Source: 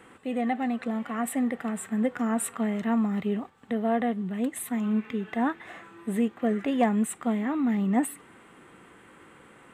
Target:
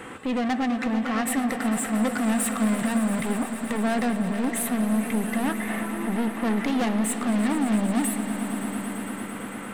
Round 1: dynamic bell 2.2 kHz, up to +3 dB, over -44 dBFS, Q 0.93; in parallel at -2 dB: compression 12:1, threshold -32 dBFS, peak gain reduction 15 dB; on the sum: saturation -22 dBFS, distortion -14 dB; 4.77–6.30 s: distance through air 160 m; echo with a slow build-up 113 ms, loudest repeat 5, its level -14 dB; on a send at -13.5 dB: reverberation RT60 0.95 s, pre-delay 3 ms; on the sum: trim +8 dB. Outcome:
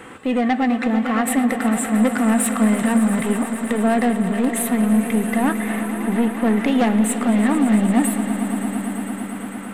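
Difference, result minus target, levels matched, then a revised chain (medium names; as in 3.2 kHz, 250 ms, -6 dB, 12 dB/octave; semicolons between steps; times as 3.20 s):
compression: peak gain reduction -8 dB; saturation: distortion -7 dB
dynamic bell 2.2 kHz, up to +3 dB, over -44 dBFS, Q 0.93; in parallel at -2 dB: compression 12:1, threshold -40.5 dBFS, peak gain reduction 23 dB; on the sum: saturation -31.5 dBFS, distortion -7 dB; 4.77–6.30 s: distance through air 160 m; echo with a slow build-up 113 ms, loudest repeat 5, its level -14 dB; on a send at -13.5 dB: reverberation RT60 0.95 s, pre-delay 3 ms; on the sum: trim +8 dB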